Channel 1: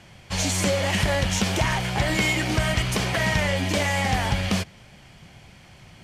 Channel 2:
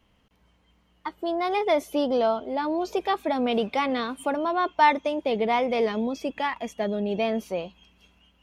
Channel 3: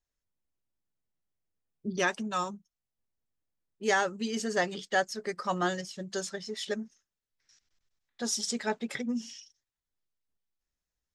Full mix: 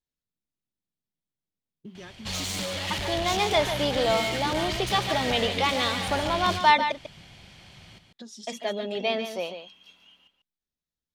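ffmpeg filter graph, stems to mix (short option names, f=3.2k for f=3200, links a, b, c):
-filter_complex "[0:a]asoftclip=type=tanh:threshold=-27.5dB,adelay=1950,volume=-3.5dB,asplit=2[a][b];[b]volume=-7.5dB[c];[1:a]highpass=f=510:p=1,adelay=1850,volume=0.5dB,asplit=3[d][e][f];[d]atrim=end=6.92,asetpts=PTS-STARTPTS,afade=t=out:st=6.916:d=0.004:c=hsin[g];[e]atrim=start=6.92:end=8.47,asetpts=PTS-STARTPTS,volume=0[h];[f]atrim=start=8.47,asetpts=PTS-STARTPTS,afade=t=in:d=0.004:c=hsin[i];[g][h][i]concat=n=3:v=0:a=1,asplit=2[j][k];[k]volume=-9dB[l];[2:a]equalizer=f=200:t=o:w=2.2:g=11.5,acompressor=threshold=-32dB:ratio=12,volume=-9dB[m];[c][l]amix=inputs=2:normalize=0,aecho=0:1:144:1[n];[a][j][m][n]amix=inputs=4:normalize=0,equalizer=f=3.7k:t=o:w=0.87:g=8.5"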